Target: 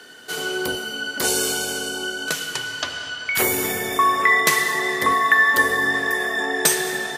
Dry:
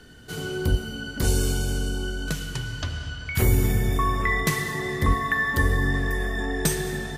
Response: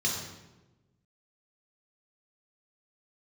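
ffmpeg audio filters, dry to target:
-af "highpass=490,volume=9dB"

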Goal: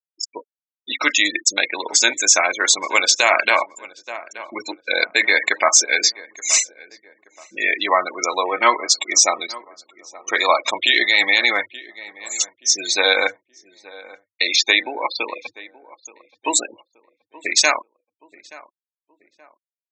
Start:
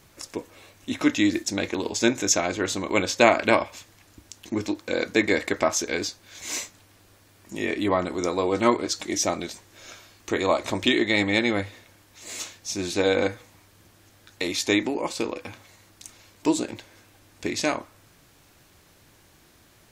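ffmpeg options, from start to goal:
-filter_complex "[0:a]asettb=1/sr,asplit=3[a][b][c];[a]atrim=end=14.564[d];[b]atrim=start=14.56:end=15.48,asetpts=PTS-STARTPTS,afade=t=in:d=0.004:c=qsin,afade=t=out:st=0.916:d=0.004:c=qsin,acrossover=split=5300[e][f];[f]acompressor=threshold=-46dB:ratio=4:attack=1:release=60[g];[e][g]amix=inputs=2:normalize=0[h];[c]atrim=start=15.476[i];[d][h]acrossfade=d=0.004:c1=hsin:c2=qsin[j];[j][i]acrossfade=d=0.004:c1=qsin:c2=hsin,afftfilt=real='re*gte(hypot(re,im),0.0355)':imag='im*gte(hypot(re,im),0.0355)':win_size=1024:overlap=0.75,highpass=940,highshelf=f=3.3k:g=6.5,asplit=2[k][l];[l]adelay=876,lowpass=f=1.3k:p=1,volume=-19dB,asplit=2[m][n];[n]adelay=876,lowpass=f=1.3k:p=1,volume=0.41,asplit=2[o][p];[p]adelay=876,lowpass=f=1.3k:p=1,volume=0.41[q];[k][m][o][q]amix=inputs=4:normalize=0,alimiter=level_in=12.5dB:limit=-1dB:release=50:level=0:latency=1,volume=-1dB"

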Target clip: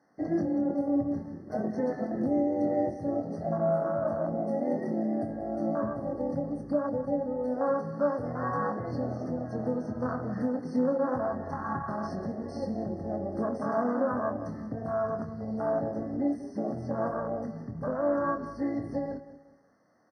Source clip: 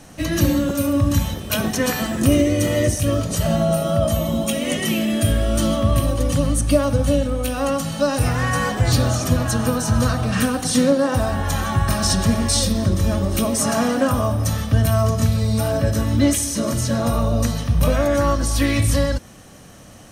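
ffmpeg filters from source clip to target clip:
-filter_complex "[0:a]afwtdn=0.1,asettb=1/sr,asplit=3[a][b][c];[a]atrim=end=3.864[d];[b]atrim=start=3.86:end=6.07,asetpts=PTS-STARTPTS,afade=t=in:d=0.004:c=qsin,afade=t=out:st=2.206:d=0.004:c=qsin,acompressor=threshold=-20dB:ratio=2.5[e];[c]atrim=start=6.066[f];[d][e]acrossfade=d=0.004:c1=hsin:c2=qsin[g];[g][f]acrossfade=d=0.004:c1=qsin:c2=hsin,alimiter=limit=-13.5dB:level=0:latency=1:release=400,highpass=260,lowpass=3k,asplit=2[h][i];[i]adelay=24,volume=-7dB[j];[h][j]amix=inputs=2:normalize=0,aecho=1:1:187|374|561:0.2|0.0698|0.0244,afftfilt=real='re*eq(mod(floor(b*sr/1024/2100),2),0)':imag='im*eq(mod(floor(b*sr/1024/2100),2),0)':win_size=1024:overlap=0.75,volume=-4dB"

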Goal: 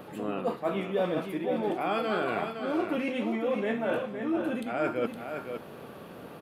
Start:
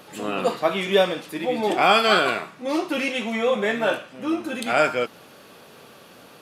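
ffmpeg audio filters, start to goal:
-af "tiltshelf=f=750:g=3.5,areverse,acompressor=threshold=-30dB:ratio=4,areverse,equalizer=f=6.1k:w=0.69:g=-12,aecho=1:1:513:0.447,volume=2dB"

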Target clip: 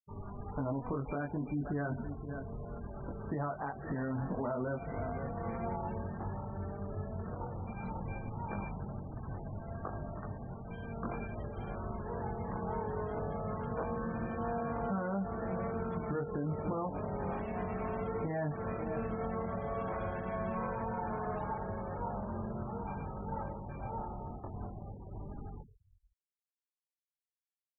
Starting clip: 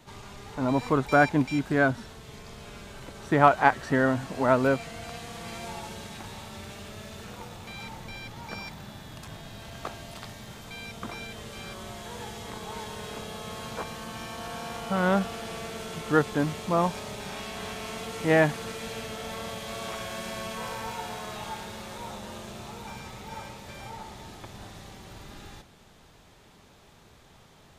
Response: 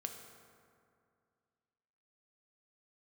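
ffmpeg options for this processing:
-filter_complex "[0:a]lowpass=1.3k,agate=range=-33dB:threshold=-42dB:ratio=3:detection=peak,asplit=2[a][b];[b]adelay=519,volume=-22dB,highshelf=f=4k:g=-11.7[c];[a][c]amix=inputs=2:normalize=0,acompressor=threshold=-28dB:ratio=16,lowshelf=f=160:g=5,flanger=delay=20:depth=2.2:speed=0.6,aemphasis=mode=production:type=50fm,alimiter=level_in=7.5dB:limit=-24dB:level=0:latency=1:release=83,volume=-7.5dB,asplit=2[d][e];[1:a]atrim=start_sample=2205,lowpass=2.8k[f];[e][f]afir=irnorm=-1:irlink=0,volume=-5dB[g];[d][g]amix=inputs=2:normalize=0,afftfilt=real='re*gte(hypot(re,im),0.00562)':imag='im*gte(hypot(re,im),0.00562)':win_size=1024:overlap=0.75,volume=1.5dB"

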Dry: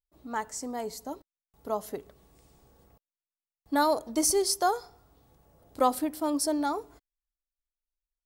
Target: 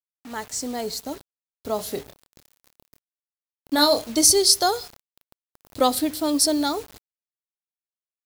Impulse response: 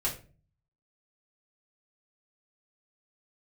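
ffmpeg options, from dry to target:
-filter_complex "[0:a]equalizer=f=100:t=o:w=0.67:g=9,equalizer=f=1k:t=o:w=0.67:g=-6,equalizer=f=4k:t=o:w=0.67:g=9,dynaudnorm=f=120:g=7:m=7dB,acrusher=bits=6:mix=0:aa=0.000001,asettb=1/sr,asplit=3[a][b][c];[a]atrim=end=1.764[d];[b]atrim=start=1.76:end=4.05,asetpts=PTS-STARTPTS,afade=t=in:d=0.004:c=qsin,afade=t=out:st=2.286:d=0.004:c=qsin,asplit=2[e][f];[f]adelay=27,volume=-6.5dB[g];[e][g]amix=inputs=2:normalize=0,atrim=end_sample=100989[h];[c]atrim=start=4.046[i];[d][h]acrossfade=d=0.004:c1=hsin:c2=qsin[j];[j][i]acrossfade=d=0.004:c1=qsin:c2=hsin,adynamicequalizer=threshold=0.0224:dfrequency=2800:dqfactor=0.7:tfrequency=2800:tqfactor=0.7:attack=5:release=100:ratio=0.375:range=2:mode=boostabove:tftype=highshelf,volume=-1dB"

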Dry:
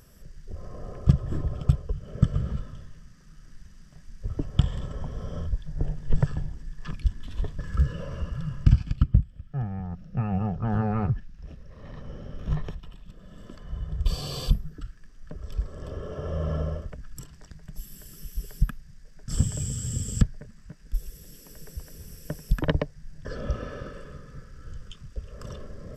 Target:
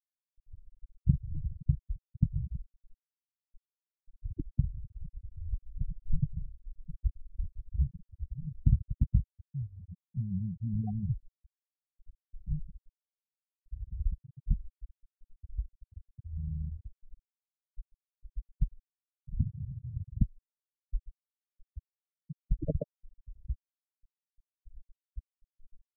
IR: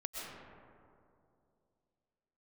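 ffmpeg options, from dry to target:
-af "aeval=exprs='val(0)+0.00282*(sin(2*PI*50*n/s)+sin(2*PI*2*50*n/s)/2+sin(2*PI*3*50*n/s)/3+sin(2*PI*4*50*n/s)/4+sin(2*PI*5*50*n/s)/5)':c=same,aeval=exprs='0.668*(cos(1*acos(clip(val(0)/0.668,-1,1)))-cos(1*PI/2))+0.0133*(cos(2*acos(clip(val(0)/0.668,-1,1)))-cos(2*PI/2))+0.0335*(cos(3*acos(clip(val(0)/0.668,-1,1)))-cos(3*PI/2))+0.0168*(cos(5*acos(clip(val(0)/0.668,-1,1)))-cos(5*PI/2))+0.0133*(cos(8*acos(clip(val(0)/0.668,-1,1)))-cos(8*PI/2))':c=same,afftfilt=real='re*gte(hypot(re,im),0.224)':imag='im*gte(hypot(re,im),0.224)':win_size=1024:overlap=0.75,volume=-6dB"

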